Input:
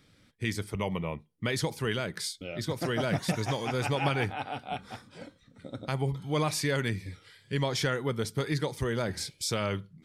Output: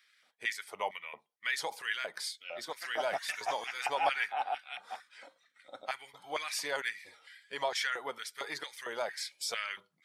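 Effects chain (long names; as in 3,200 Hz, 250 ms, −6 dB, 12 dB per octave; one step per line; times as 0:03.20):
spectral magnitudes quantised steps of 15 dB
auto-filter high-pass square 2.2 Hz 740–1,800 Hz
level −3.5 dB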